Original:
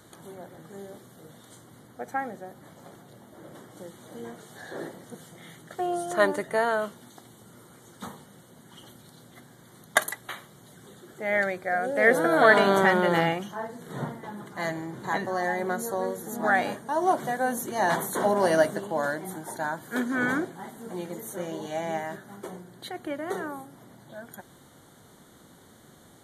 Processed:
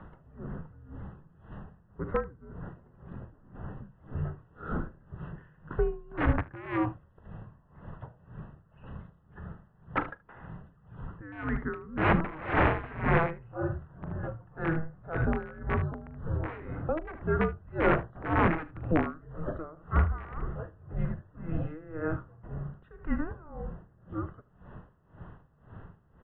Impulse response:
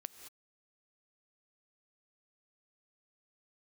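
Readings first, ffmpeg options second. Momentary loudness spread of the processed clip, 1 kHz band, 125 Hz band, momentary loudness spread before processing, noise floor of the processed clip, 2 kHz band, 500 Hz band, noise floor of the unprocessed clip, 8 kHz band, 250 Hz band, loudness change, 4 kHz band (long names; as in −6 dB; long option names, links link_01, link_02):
22 LU, −7.0 dB, +7.5 dB, 22 LU, −62 dBFS, −8.5 dB, −7.5 dB, −54 dBFS, below −40 dB, −1.5 dB, −6.0 dB, −14.0 dB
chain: -filter_complex "[0:a]equalizer=frequency=66:width=0.38:gain=13,asplit=2[link_01][link_02];[link_02]acompressor=threshold=-35dB:ratio=6,volume=2dB[link_03];[link_01][link_03]amix=inputs=2:normalize=0,aeval=exprs='(mod(4.47*val(0)+1,2)-1)/4.47':channel_layout=same,highpass=frequency=160:width_type=q:width=0.5412,highpass=frequency=160:width_type=q:width=1.307,lowpass=frequency=2400:width_type=q:width=0.5176,lowpass=frequency=2400:width_type=q:width=0.7071,lowpass=frequency=2400:width_type=q:width=1.932,afreqshift=-320,asplit=2[link_04][link_05];[link_05]aecho=0:1:41|76:0.158|0.211[link_06];[link_04][link_06]amix=inputs=2:normalize=0,aeval=exprs='val(0)*pow(10,-22*(0.5-0.5*cos(2*PI*1.9*n/s))/20)':channel_layout=same"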